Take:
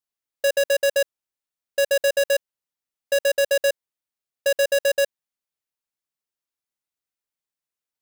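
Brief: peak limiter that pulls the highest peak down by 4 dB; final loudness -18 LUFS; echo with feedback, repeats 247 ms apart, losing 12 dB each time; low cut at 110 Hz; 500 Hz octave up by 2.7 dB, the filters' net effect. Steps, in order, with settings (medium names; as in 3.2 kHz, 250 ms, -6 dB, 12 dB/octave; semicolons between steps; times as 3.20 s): high-pass 110 Hz; peaking EQ 500 Hz +3 dB; peak limiter -18 dBFS; feedback delay 247 ms, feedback 25%, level -12 dB; trim +6 dB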